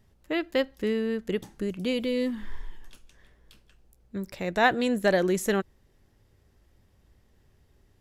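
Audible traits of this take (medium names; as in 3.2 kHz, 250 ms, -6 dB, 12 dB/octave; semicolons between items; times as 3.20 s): noise floor -64 dBFS; spectral tilt -3.5 dB/octave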